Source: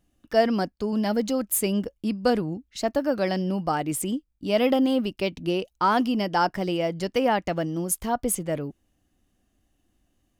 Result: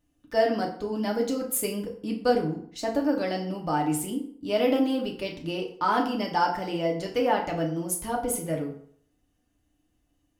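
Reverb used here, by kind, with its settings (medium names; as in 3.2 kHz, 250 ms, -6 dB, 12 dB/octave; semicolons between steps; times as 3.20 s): FDN reverb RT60 0.59 s, low-frequency decay 0.9×, high-frequency decay 0.7×, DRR -0.5 dB; trim -5.5 dB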